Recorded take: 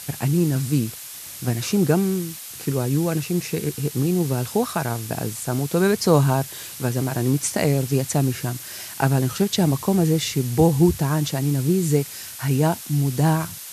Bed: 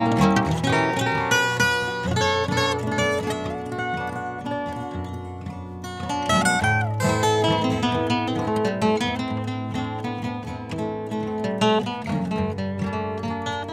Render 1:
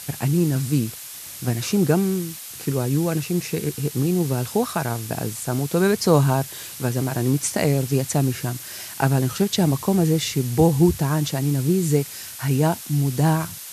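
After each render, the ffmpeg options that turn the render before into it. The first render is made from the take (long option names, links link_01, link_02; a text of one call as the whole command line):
ffmpeg -i in.wav -af anull out.wav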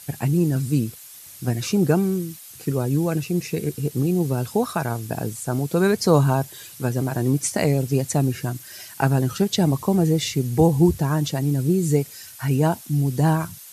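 ffmpeg -i in.wav -af "afftdn=noise_reduction=9:noise_floor=-37" out.wav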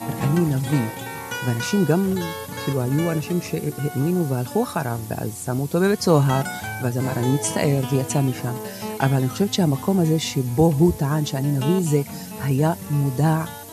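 ffmpeg -i in.wav -i bed.wav -filter_complex "[1:a]volume=-10dB[link_01];[0:a][link_01]amix=inputs=2:normalize=0" out.wav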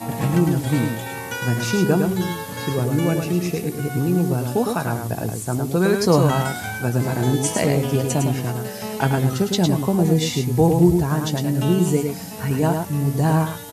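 ffmpeg -i in.wav -filter_complex "[0:a]asplit=2[link_01][link_02];[link_02]adelay=17,volume=-12dB[link_03];[link_01][link_03]amix=inputs=2:normalize=0,aecho=1:1:107:0.562" out.wav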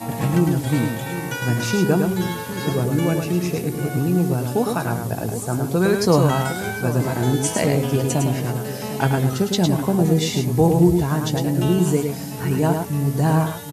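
ffmpeg -i in.wav -filter_complex "[0:a]asplit=2[link_01][link_02];[link_02]adelay=758,volume=-12dB,highshelf=frequency=4000:gain=-17.1[link_03];[link_01][link_03]amix=inputs=2:normalize=0" out.wav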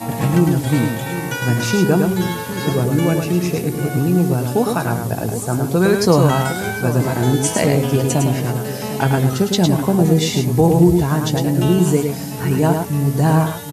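ffmpeg -i in.wav -af "volume=3.5dB,alimiter=limit=-2dB:level=0:latency=1" out.wav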